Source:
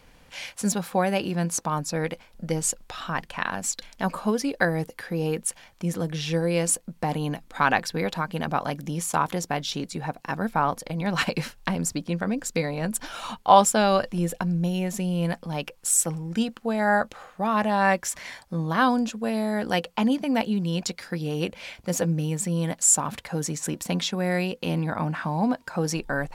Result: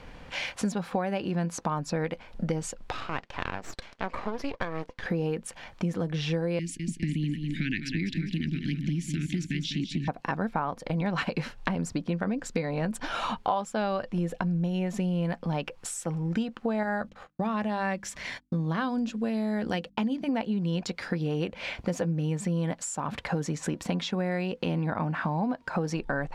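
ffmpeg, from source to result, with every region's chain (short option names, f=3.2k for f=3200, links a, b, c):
-filter_complex "[0:a]asettb=1/sr,asplit=3[a][b][c];[a]atrim=end=2.924[d];[b]atrim=start=2.92:end=5.06,asetpts=PTS-STARTPTS,afade=t=in:d=0.004:c=qsin,afade=t=out:st=2.136:d=0.004:c=qsin,highpass=320,lowpass=6.4k,aeval=exprs='max(val(0),0)':c=same,tremolo=f=3.2:d=0.5[e];[c]atrim=start=5.056[f];[d][e]acrossfade=d=0.004:c1=hsin:c2=qsin[g];[g][f]acrossfade=d=0.004:c1=qsin:c2=hsin,asettb=1/sr,asplit=3[h][i][j];[h]atrim=end=6.594[k];[i]atrim=start=6.59:end=10.08,asetpts=PTS-STARTPTS,afade=t=in:d=0.004:c=qsin,afade=t=out:st=3.486:d=0.004:c=qsin,asuperstop=centerf=810:order=12:qfactor=0.51,highshelf=f=9.8k:g=-9,aecho=1:1:202|404|606|808:0.355|0.142|0.0568|0.0227,atrim=end_sample=153909[l];[j]atrim=start=10.076[m];[k][l]acrossfade=d=0.004:c1=hsin:c2=qsin[n];[n][m]acrossfade=d=0.004:c1=qsin:c2=hsin,asettb=1/sr,asplit=3[o][p][q];[o]atrim=end=16.834[r];[p]atrim=start=16.83:end=20.29,asetpts=PTS-STARTPTS,afade=t=in:d=0.004:c=qsin,afade=t=out:st=3.456:d=0.004:c=qsin,agate=range=-45dB:threshold=-44dB:ratio=16:release=100:detection=peak,equalizer=f=900:t=o:w=2.5:g=-7.5,bandreject=f=50:t=h:w=6,bandreject=f=100:t=h:w=6,bandreject=f=150:t=h:w=6,bandreject=f=200:t=h:w=6,bandreject=f=250:t=h:w=6,bandreject=f=300:t=h:w=6[s];[q]atrim=start=20.286[t];[r][s]acrossfade=d=0.004:c1=hsin:c2=qsin[u];[u][t]acrossfade=d=0.004:c1=qsin:c2=hsin,highshelf=f=8.3k:g=-9,acompressor=threshold=-35dB:ratio=6,aemphasis=mode=reproduction:type=50kf,volume=8.5dB"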